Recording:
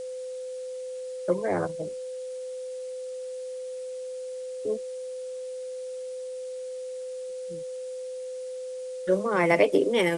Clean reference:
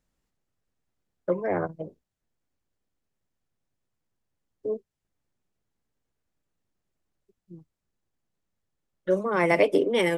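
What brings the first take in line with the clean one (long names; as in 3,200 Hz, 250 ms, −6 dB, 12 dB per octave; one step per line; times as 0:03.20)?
notch filter 510 Hz, Q 30
noise reduction from a noise print 30 dB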